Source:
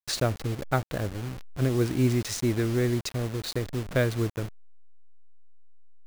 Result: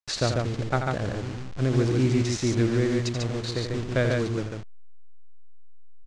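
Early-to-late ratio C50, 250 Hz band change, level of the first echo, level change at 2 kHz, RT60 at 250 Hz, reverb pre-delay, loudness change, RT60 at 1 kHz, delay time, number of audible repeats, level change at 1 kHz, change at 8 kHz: no reverb, +2.0 dB, -7.5 dB, +2.0 dB, no reverb, no reverb, +2.0 dB, no reverb, 84 ms, 2, +2.0 dB, 0.0 dB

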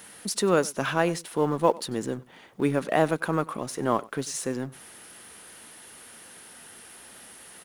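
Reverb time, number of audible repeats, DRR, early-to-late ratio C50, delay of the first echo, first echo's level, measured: no reverb, 1, no reverb, no reverb, 95 ms, -22.0 dB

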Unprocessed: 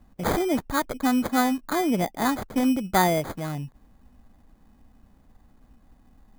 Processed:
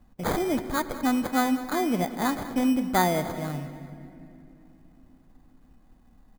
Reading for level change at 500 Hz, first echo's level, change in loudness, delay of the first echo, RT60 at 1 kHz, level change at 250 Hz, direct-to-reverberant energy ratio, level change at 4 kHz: -2.0 dB, -16.0 dB, -1.5 dB, 195 ms, 2.3 s, -1.5 dB, 9.5 dB, -2.0 dB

